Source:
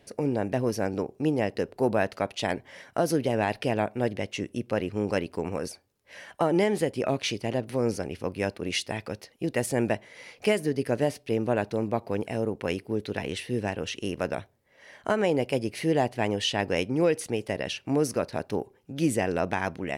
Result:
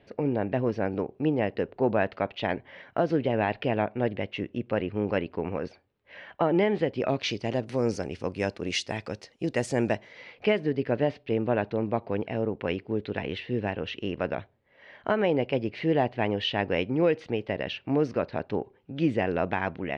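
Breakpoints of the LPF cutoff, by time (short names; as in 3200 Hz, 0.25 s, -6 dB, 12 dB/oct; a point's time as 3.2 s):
LPF 24 dB/oct
6.73 s 3400 Hz
7.65 s 7400 Hz
9.88 s 7400 Hz
10.33 s 3600 Hz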